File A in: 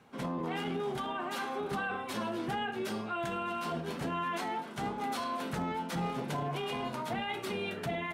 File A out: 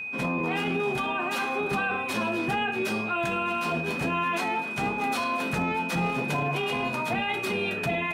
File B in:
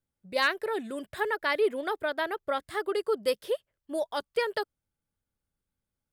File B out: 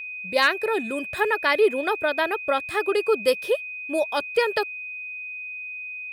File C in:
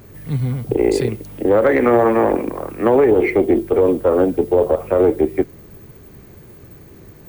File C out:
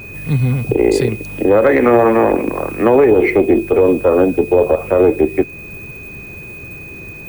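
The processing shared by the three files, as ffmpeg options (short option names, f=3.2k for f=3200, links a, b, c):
-filter_complex "[0:a]asplit=2[a][b];[b]alimiter=limit=-14.5dB:level=0:latency=1:release=292,volume=1dB[c];[a][c]amix=inputs=2:normalize=0,aeval=exprs='val(0)+0.0251*sin(2*PI*2500*n/s)':c=same"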